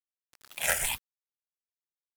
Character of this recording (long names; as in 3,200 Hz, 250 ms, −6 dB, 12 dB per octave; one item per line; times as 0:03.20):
phaser sweep stages 6, 1 Hz, lowest notch 280–1,200 Hz
sample-and-hold tremolo 3.9 Hz, depth 70%
a quantiser's noise floor 8 bits, dither none